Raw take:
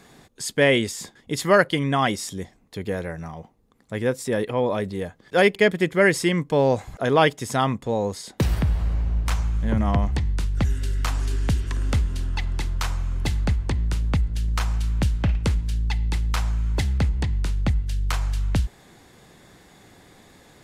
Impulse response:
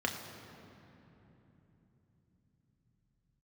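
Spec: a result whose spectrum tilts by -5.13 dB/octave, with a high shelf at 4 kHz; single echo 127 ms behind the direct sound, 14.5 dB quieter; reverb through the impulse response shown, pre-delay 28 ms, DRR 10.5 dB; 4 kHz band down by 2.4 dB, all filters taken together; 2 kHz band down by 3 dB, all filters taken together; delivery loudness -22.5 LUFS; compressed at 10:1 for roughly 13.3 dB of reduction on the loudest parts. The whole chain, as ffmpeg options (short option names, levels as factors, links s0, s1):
-filter_complex "[0:a]equalizer=f=2000:t=o:g=-4,highshelf=f=4000:g=8.5,equalizer=f=4000:t=o:g=-7,acompressor=threshold=0.0447:ratio=10,aecho=1:1:127:0.188,asplit=2[s0][s1];[1:a]atrim=start_sample=2205,adelay=28[s2];[s1][s2]afir=irnorm=-1:irlink=0,volume=0.141[s3];[s0][s3]amix=inputs=2:normalize=0,volume=2.99"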